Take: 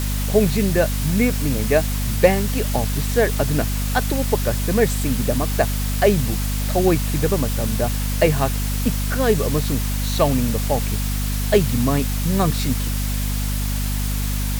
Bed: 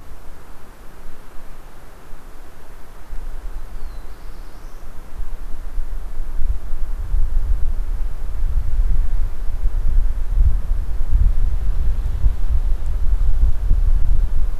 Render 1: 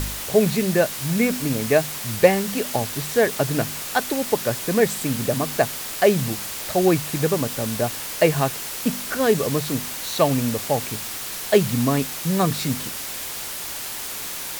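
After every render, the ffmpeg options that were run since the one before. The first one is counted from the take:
-af "bandreject=f=50:t=h:w=4,bandreject=f=100:t=h:w=4,bandreject=f=150:t=h:w=4,bandreject=f=200:t=h:w=4,bandreject=f=250:t=h:w=4"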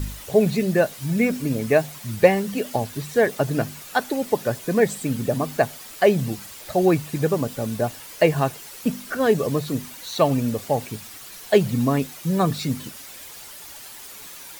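-af "afftdn=nr=11:nf=-31"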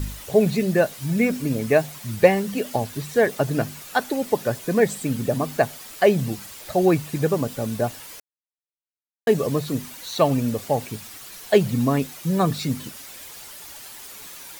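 -filter_complex "[0:a]asplit=3[a][b][c];[a]atrim=end=8.2,asetpts=PTS-STARTPTS,afade=t=out:st=8.196:d=0.004:c=hsin[d];[b]atrim=start=8.2:end=9.27,asetpts=PTS-STARTPTS,volume=0[e];[c]atrim=start=9.27,asetpts=PTS-STARTPTS,afade=t=in:d=0.004:c=hsin[f];[d][e][f]concat=n=3:v=0:a=1"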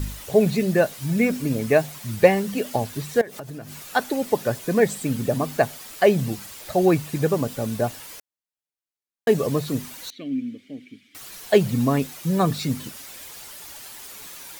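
-filter_complex "[0:a]asettb=1/sr,asplit=3[a][b][c];[a]atrim=end=3.214[d];[b]atrim=start=3.21:end=3.87,asetpts=PTS-STARTPTS,afade=t=in:d=0.004:c=qsin,afade=t=out:st=0.656:d=0.004:c=qsin,acompressor=threshold=-32dB:ratio=10:attack=3.2:release=140:knee=1:detection=peak[e];[c]atrim=start=3.866[f];[d][e]acrossfade=d=0.004:c1=hsin:c2=qsin[g];[g][f]acrossfade=d=0.004:c1=qsin:c2=hsin,asettb=1/sr,asplit=3[h][i][j];[h]atrim=end=10.104[k];[i]atrim=start=10.1:end=11.15,asetpts=PTS-STARTPTS,afade=t=in:d=0.004:c=qsin,afade=t=out:st=1.046:d=0.004:c=qsin,asplit=3[l][m][n];[l]bandpass=f=270:t=q:w=8,volume=0dB[o];[m]bandpass=f=2.29k:t=q:w=8,volume=-6dB[p];[n]bandpass=f=3.01k:t=q:w=8,volume=-9dB[q];[o][p][q]amix=inputs=3:normalize=0[r];[j]atrim=start=11.146[s];[k][r]acrossfade=d=0.004:c1=hsin:c2=qsin[t];[t][s]acrossfade=d=0.004:c1=qsin:c2=hsin"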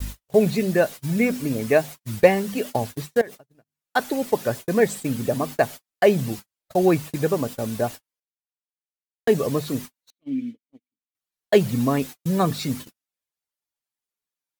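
-af "agate=range=-51dB:threshold=-31dB:ratio=16:detection=peak,adynamicequalizer=threshold=0.0126:dfrequency=140:dqfactor=1.8:tfrequency=140:tqfactor=1.8:attack=5:release=100:ratio=0.375:range=2.5:mode=cutabove:tftype=bell"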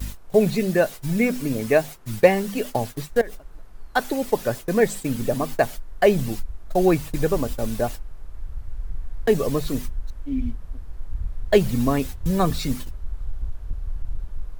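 -filter_complex "[1:a]volume=-13.5dB[a];[0:a][a]amix=inputs=2:normalize=0"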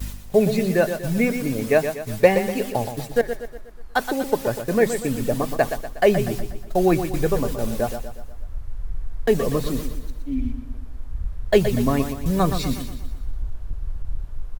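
-af "aecho=1:1:121|242|363|484|605|726:0.355|0.174|0.0852|0.0417|0.0205|0.01"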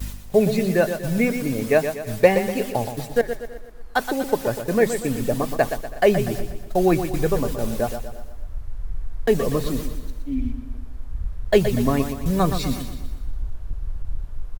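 -af "aecho=1:1:326:0.075"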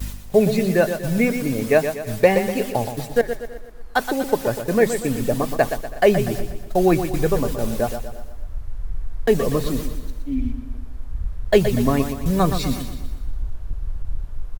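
-af "volume=1.5dB,alimiter=limit=-3dB:level=0:latency=1"

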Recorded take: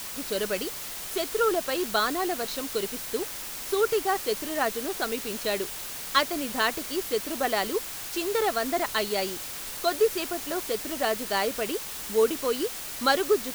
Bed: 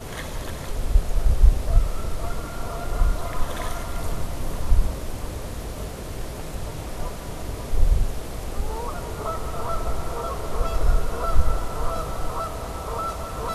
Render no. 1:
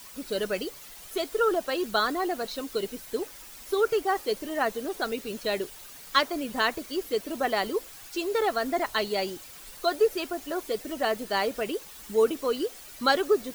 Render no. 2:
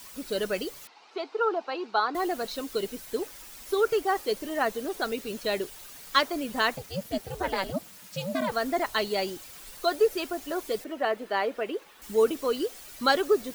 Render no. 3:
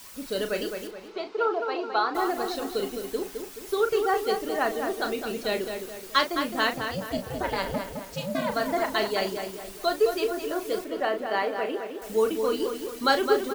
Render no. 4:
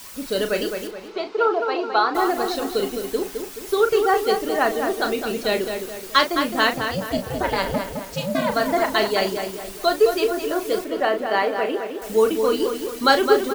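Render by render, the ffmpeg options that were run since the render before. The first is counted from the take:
-af "afftdn=nr=11:nf=-37"
-filter_complex "[0:a]asettb=1/sr,asplit=3[a][b][c];[a]atrim=end=0.874[d];[b]atrim=start=0.87:end=2.15,asetpts=PTS-STARTPTS,afade=t=in:d=0.004:c=qsin,afade=t=out:st=1.276:d=0.004:c=qsin,highpass=f=300:w=0.5412,highpass=f=300:w=1.3066,equalizer=f=360:t=q:w=4:g=-4,equalizer=f=580:t=q:w=4:g=-9,equalizer=f=860:t=q:w=4:g=8,equalizer=f=1.8k:t=q:w=4:g=-8,equalizer=f=3.3k:t=q:w=4:g=-9,lowpass=f=4.1k:w=0.5412,lowpass=f=4.1k:w=1.3066[e];[c]atrim=start=2.146[f];[d][e]acrossfade=d=0.004:c1=hsin:c2=qsin[g];[g][f]acrossfade=d=0.004:c1=qsin:c2=hsin,asettb=1/sr,asplit=3[h][i][j];[h]atrim=end=6.774[k];[i]atrim=start=6.77:end=8.52,asetpts=PTS-STARTPTS,afade=t=in:d=0.004:c=qsin,afade=t=out:st=1.746:d=0.004:c=qsin,aeval=exprs='val(0)*sin(2*PI*190*n/s)':c=same[l];[j]atrim=start=8.516[m];[k][l]acrossfade=d=0.004:c1=hsin:c2=qsin[n];[n][m]acrossfade=d=0.004:c1=qsin:c2=hsin,asettb=1/sr,asplit=3[o][p][q];[o]atrim=end=10.844[r];[p]atrim=start=10.84:end=12.02,asetpts=PTS-STARTPTS,afade=t=in:d=0.004:c=qsin,afade=t=out:st=1.176:d=0.004:c=qsin,acrossover=split=230 3100:gain=0.158 1 0.2[s][t][u];[s][t][u]amix=inputs=3:normalize=0[v];[q]atrim=start=12.016[w];[r][v]acrossfade=d=0.004:c1=hsin:c2=qsin[x];[x][w]acrossfade=d=0.004:c1=qsin:c2=hsin"
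-filter_complex "[0:a]asplit=2[a][b];[b]adelay=37,volume=-8.5dB[c];[a][c]amix=inputs=2:normalize=0,asplit=2[d][e];[e]adelay=213,lowpass=f=3k:p=1,volume=-6dB,asplit=2[f][g];[g]adelay=213,lowpass=f=3k:p=1,volume=0.46,asplit=2[h][i];[i]adelay=213,lowpass=f=3k:p=1,volume=0.46,asplit=2[j][k];[k]adelay=213,lowpass=f=3k:p=1,volume=0.46,asplit=2[l][m];[m]adelay=213,lowpass=f=3k:p=1,volume=0.46,asplit=2[n][o];[o]adelay=213,lowpass=f=3k:p=1,volume=0.46[p];[f][h][j][l][n][p]amix=inputs=6:normalize=0[q];[d][q]amix=inputs=2:normalize=0"
-af "volume=6dB,alimiter=limit=-2dB:level=0:latency=1"

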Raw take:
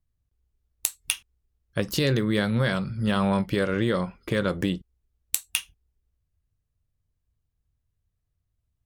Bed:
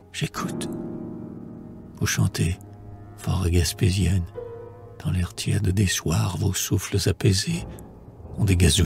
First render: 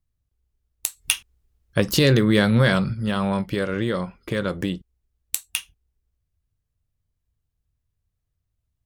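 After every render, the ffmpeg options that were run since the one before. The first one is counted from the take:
-filter_complex "[0:a]asplit=3[a][b][c];[a]afade=t=out:st=0.96:d=0.02[d];[b]acontrast=73,afade=t=in:st=0.96:d=0.02,afade=t=out:st=2.93:d=0.02[e];[c]afade=t=in:st=2.93:d=0.02[f];[d][e][f]amix=inputs=3:normalize=0"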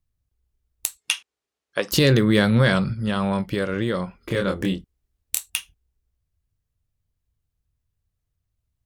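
-filter_complex "[0:a]asettb=1/sr,asplit=3[a][b][c];[a]atrim=end=0.974[d];[b]atrim=start=0.97:end=1.92,asetpts=PTS-STARTPTS,afade=t=in:d=0.004:c=qsin,afade=t=out:st=0.946:d=0.004:c=qsin,highpass=460,lowpass=7.8k[e];[c]atrim=start=1.916[f];[d][e]acrossfade=d=0.004:c1=hsin:c2=qsin[g];[g][f]acrossfade=d=0.004:c1=qsin:c2=hsin,asettb=1/sr,asplit=3[h][i][j];[h]atrim=end=2.494[k];[i]atrim=start=2.49:end=3.44,asetpts=PTS-STARTPTS,afade=t=in:d=0.004:c=qsin,afade=t=out:st=0.946:d=0.004:c=qsin,lowpass=f=11k:w=0.5412,lowpass=f=11k:w=1.3066[l];[j]atrim=start=3.436[m];[k][l]acrossfade=d=0.004:c1=hsin:c2=qsin[n];[n][m]acrossfade=d=0.004:c1=qsin:c2=hsin,asettb=1/sr,asplit=3[o][p][q];[o]atrim=end=4.194[r];[p]atrim=start=4.19:end=5.5,asetpts=PTS-STARTPTS,afade=t=in:d=0.004:c=qsin,afade=t=out:st=1.306:d=0.004:c=qsin,asplit=2[s][t];[t]adelay=26,volume=-3dB[u];[s][u]amix=inputs=2:normalize=0,atrim=end_sample=57771[v];[q]atrim=start=5.496[w];[r][v]acrossfade=d=0.004:c1=hsin:c2=qsin[x];[x][w]acrossfade=d=0.004:c1=qsin:c2=hsin"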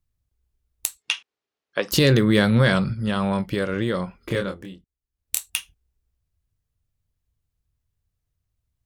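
-filter_complex "[0:a]asettb=1/sr,asplit=3[a][b][c];[a]atrim=end=1.024[d];[b]atrim=start=1.02:end=1.86,asetpts=PTS-STARTPTS,afade=t=in:d=0.004:c=qsin,afade=t=out:st=0.836:d=0.004:c=qsin,highpass=100,lowpass=5.2k[e];[c]atrim=start=1.856[f];[d][e]acrossfade=d=0.004:c1=hsin:c2=qsin[g];[g][f]acrossfade=d=0.004:c1=qsin:c2=hsin,asplit=3[h][i][j];[h]atrim=end=4.71,asetpts=PTS-STARTPTS,afade=t=out:st=4.36:d=0.35:c=qua:silence=0.16788[k];[i]atrim=start=4.71:end=5,asetpts=PTS-STARTPTS,volume=-15.5dB[l];[j]atrim=start=5,asetpts=PTS-STARTPTS,afade=t=in:d=0.35:c=qua:silence=0.16788[m];[k][l][m]concat=n=3:v=0:a=1"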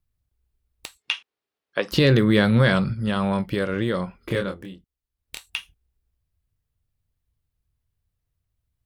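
-filter_complex "[0:a]acrossover=split=5100[a][b];[b]acompressor=threshold=-40dB:ratio=4:attack=1:release=60[c];[a][c]amix=inputs=2:normalize=0,equalizer=f=6.6k:t=o:w=0.67:g=-4.5"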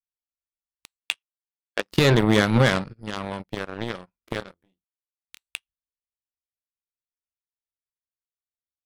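-af "aeval=exprs='0.562*(cos(1*acos(clip(val(0)/0.562,-1,1)))-cos(1*PI/2))+0.0794*(cos(7*acos(clip(val(0)/0.562,-1,1)))-cos(7*PI/2))':c=same"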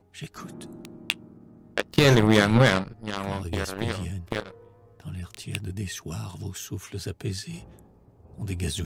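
-filter_complex "[1:a]volume=-11.5dB[a];[0:a][a]amix=inputs=2:normalize=0"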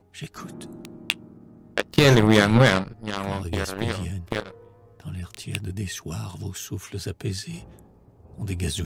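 -af "volume=2dB"

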